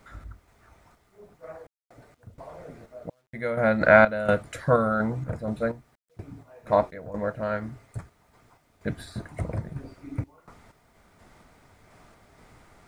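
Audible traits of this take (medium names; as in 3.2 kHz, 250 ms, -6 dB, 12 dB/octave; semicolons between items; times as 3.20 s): random-step tremolo 4.2 Hz, depth 100%; a quantiser's noise floor 12-bit, dither none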